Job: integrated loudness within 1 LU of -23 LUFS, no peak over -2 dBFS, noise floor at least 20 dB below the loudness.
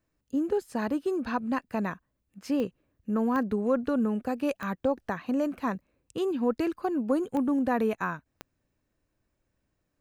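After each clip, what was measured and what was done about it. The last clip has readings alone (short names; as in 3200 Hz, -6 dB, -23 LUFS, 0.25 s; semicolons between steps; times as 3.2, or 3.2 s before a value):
clicks 5; loudness -29.5 LUFS; peak -15.0 dBFS; loudness target -23.0 LUFS
-> de-click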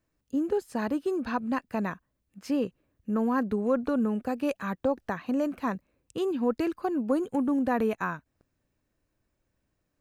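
clicks 0; loudness -29.5 LUFS; peak -15.0 dBFS; loudness target -23.0 LUFS
-> gain +6.5 dB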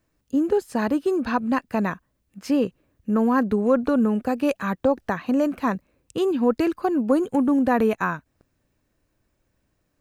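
loudness -23.0 LUFS; peak -8.5 dBFS; noise floor -73 dBFS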